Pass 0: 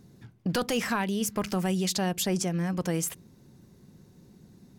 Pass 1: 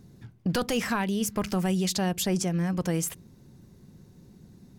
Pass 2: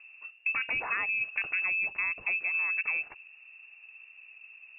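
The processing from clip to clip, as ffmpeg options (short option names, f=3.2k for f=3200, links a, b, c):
-af "lowshelf=f=110:g=7"
-af "acompressor=threshold=-28dB:ratio=3,lowpass=f=2.4k:t=q:w=0.5098,lowpass=f=2.4k:t=q:w=0.6013,lowpass=f=2.4k:t=q:w=0.9,lowpass=f=2.4k:t=q:w=2.563,afreqshift=-2800"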